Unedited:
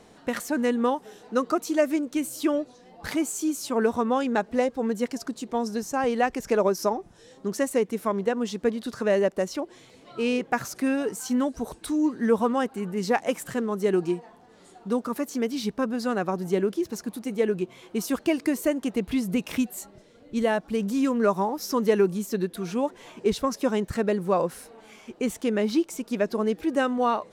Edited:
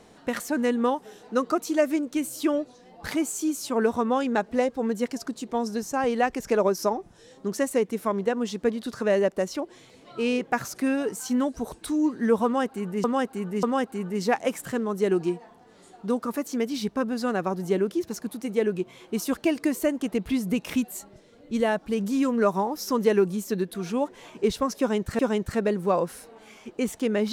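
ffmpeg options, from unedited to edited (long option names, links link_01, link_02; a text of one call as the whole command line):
ffmpeg -i in.wav -filter_complex "[0:a]asplit=4[link_01][link_02][link_03][link_04];[link_01]atrim=end=13.042[link_05];[link_02]atrim=start=12.448:end=13.042[link_06];[link_03]atrim=start=12.448:end=24.012[link_07];[link_04]atrim=start=23.608[link_08];[link_05][link_06]acrossfade=duration=0.004:curve1=hsin:curve2=hsin[link_09];[link_09][link_07]acrossfade=duration=0.004:curve1=hsin:curve2=hsin[link_10];[link_10][link_08]acrossfade=duration=0.004:curve1=hsin:curve2=hsin" out.wav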